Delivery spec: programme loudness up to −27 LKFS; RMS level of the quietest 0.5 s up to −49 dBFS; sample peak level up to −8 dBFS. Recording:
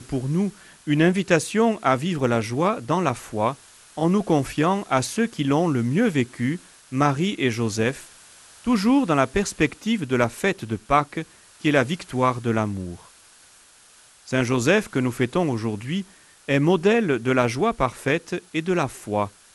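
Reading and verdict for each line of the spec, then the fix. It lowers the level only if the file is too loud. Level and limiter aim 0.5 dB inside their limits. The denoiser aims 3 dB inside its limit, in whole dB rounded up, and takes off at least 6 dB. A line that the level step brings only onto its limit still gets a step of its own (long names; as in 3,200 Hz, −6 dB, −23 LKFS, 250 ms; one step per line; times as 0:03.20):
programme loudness −23.0 LKFS: out of spec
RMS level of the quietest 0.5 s −52 dBFS: in spec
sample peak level −5.5 dBFS: out of spec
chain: level −4.5 dB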